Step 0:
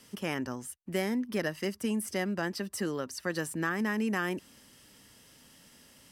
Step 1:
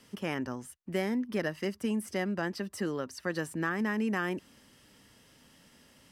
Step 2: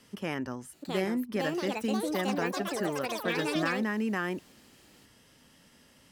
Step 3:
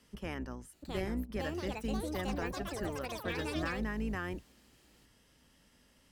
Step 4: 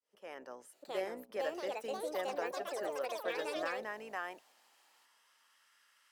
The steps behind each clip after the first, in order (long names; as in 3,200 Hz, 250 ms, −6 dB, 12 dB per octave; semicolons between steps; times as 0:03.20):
high-shelf EQ 5,000 Hz −8 dB
delay with pitch and tempo change per echo 732 ms, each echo +6 semitones, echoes 3
sub-octave generator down 2 octaves, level −1 dB; level −7 dB
fade in at the beginning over 0.61 s; high-pass filter sweep 540 Hz → 1,300 Hz, 0:03.62–0:05.79; level −2.5 dB